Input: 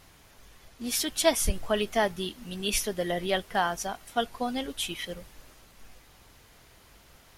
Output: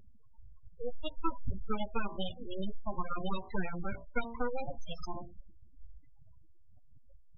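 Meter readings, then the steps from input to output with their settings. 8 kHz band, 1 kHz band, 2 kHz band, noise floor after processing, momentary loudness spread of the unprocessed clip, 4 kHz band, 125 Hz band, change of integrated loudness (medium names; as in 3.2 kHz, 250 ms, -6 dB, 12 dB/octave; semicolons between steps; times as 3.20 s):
under -30 dB, -8.5 dB, -11.0 dB, -53 dBFS, 11 LU, -15.5 dB, -3.5 dB, -10.5 dB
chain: full-wave rectifier; de-hum 57.99 Hz, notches 20; compression 3:1, threshold -32 dBFS, peak gain reduction 11.5 dB; spectral gate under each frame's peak -20 dB strong; trim +5.5 dB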